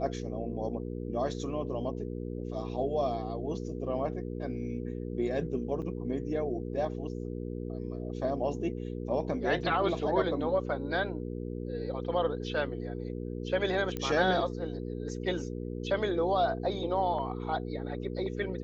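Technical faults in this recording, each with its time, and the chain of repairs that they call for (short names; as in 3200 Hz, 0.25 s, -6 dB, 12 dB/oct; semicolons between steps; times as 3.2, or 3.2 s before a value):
hum 60 Hz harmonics 8 -37 dBFS
5.82 gap 4.8 ms
13.97 pop -20 dBFS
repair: de-click; de-hum 60 Hz, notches 8; interpolate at 5.82, 4.8 ms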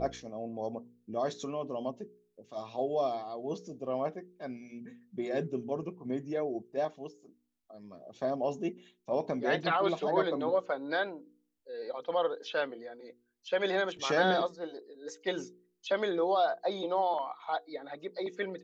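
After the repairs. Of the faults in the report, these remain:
none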